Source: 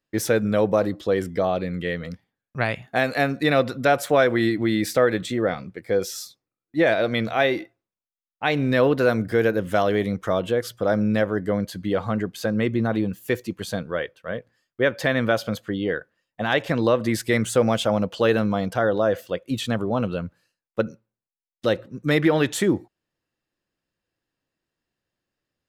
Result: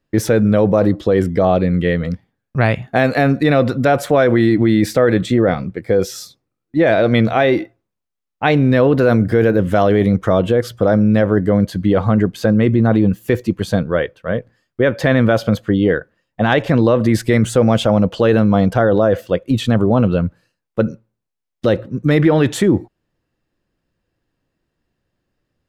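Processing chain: tilt -2 dB/oct; in parallel at -3 dB: negative-ratio compressor -20 dBFS, ratio -0.5; on the sum: gain +2 dB

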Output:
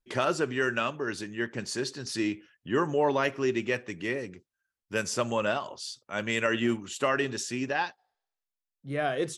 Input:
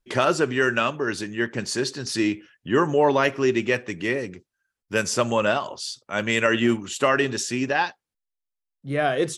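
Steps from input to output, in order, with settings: spectral repair 8–8.54, 350–10000 Hz both; gain -6.5 dB

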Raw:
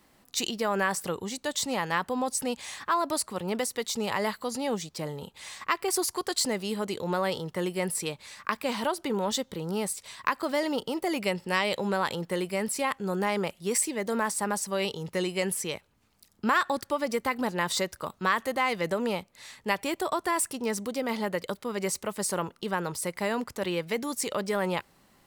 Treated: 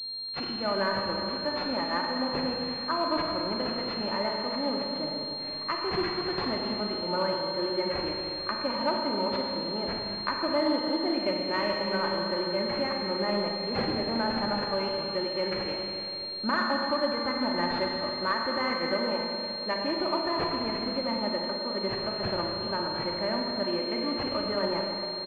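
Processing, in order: comb 3.3 ms, depth 62%; reverb RT60 3.0 s, pre-delay 35 ms, DRR -0.5 dB; pulse-width modulation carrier 4200 Hz; gain -4 dB

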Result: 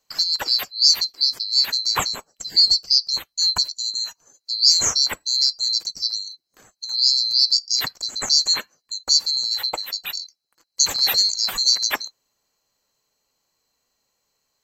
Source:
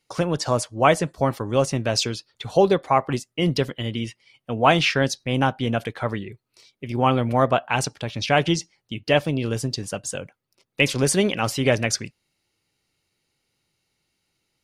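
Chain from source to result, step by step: band-swap scrambler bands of 4000 Hz; 2.71–3.46 low shelf 250 Hz +8.5 dB; gain +1 dB

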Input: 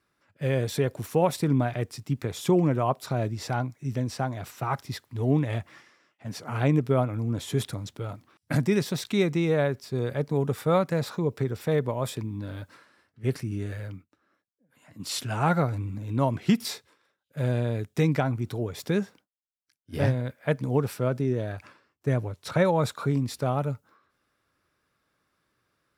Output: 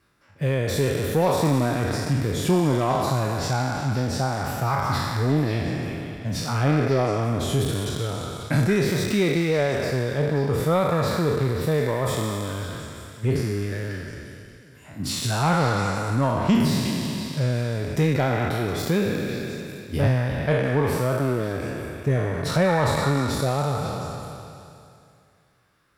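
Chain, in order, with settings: spectral trails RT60 2.51 s; reverb removal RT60 0.69 s; de-esser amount 60%; low shelf 130 Hz +6.5 dB; in parallel at +2 dB: compressor, threshold -30 dBFS, peak gain reduction 15 dB; on the sum: soft clip -9.5 dBFS, distortion -21 dB; on a send: delay with a stepping band-pass 0.179 s, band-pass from 1500 Hz, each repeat 0.7 oct, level -3 dB; on the sum: gain -1 dB; MP3 160 kbps 48000 Hz

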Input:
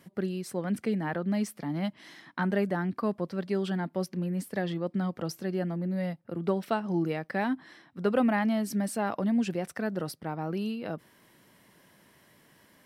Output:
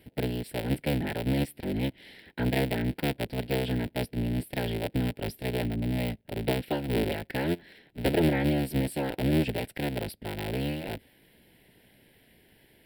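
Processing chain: cycle switcher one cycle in 3, inverted; fixed phaser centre 2800 Hz, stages 4; gain +2.5 dB

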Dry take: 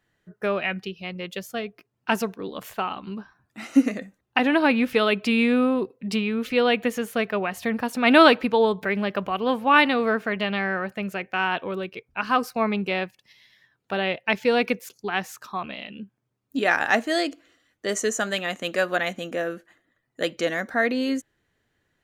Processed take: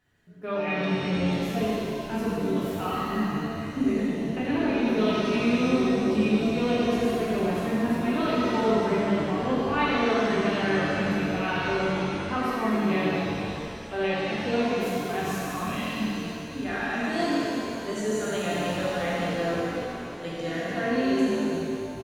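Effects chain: low shelf 160 Hz +5 dB; reverse; compressor 5:1, threshold -31 dBFS, peak gain reduction 20 dB; reverse; harmonic-percussive split percussive -10 dB; frequency-shifting echo 0.223 s, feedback 54%, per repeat -50 Hz, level -10.5 dB; shimmer reverb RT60 2.4 s, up +7 st, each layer -8 dB, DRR -7.5 dB

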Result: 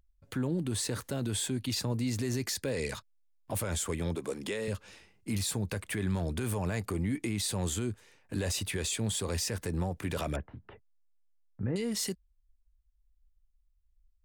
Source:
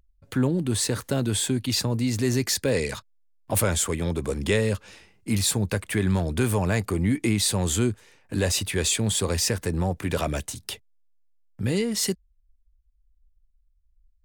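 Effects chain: 10.36–11.76 inverse Chebyshev low-pass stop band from 6900 Hz, stop band 70 dB; limiter -18 dBFS, peak gain reduction 8 dB; 4.15–4.68 HPF 230 Hz 12 dB/oct; gain -5.5 dB

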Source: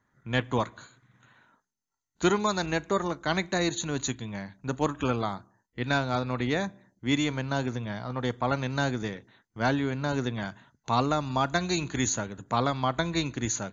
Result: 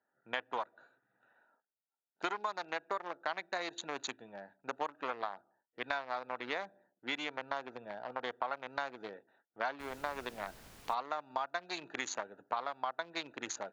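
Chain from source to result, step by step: Wiener smoothing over 41 samples; Chebyshev band-pass 820–4900 Hz, order 2; high shelf 3600 Hz -11.5 dB; compressor 6:1, threshold -41 dBFS, peak gain reduction 16 dB; 9.79–10.93 added noise pink -63 dBFS; gain +7.5 dB

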